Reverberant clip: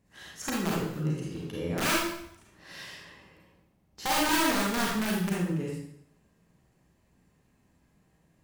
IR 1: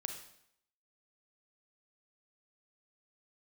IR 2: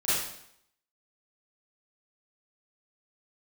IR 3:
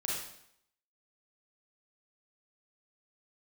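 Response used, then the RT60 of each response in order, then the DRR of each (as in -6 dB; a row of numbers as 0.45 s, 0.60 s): 3; 0.70 s, 0.70 s, 0.70 s; 5.0 dB, -13.0 dB, -4.0 dB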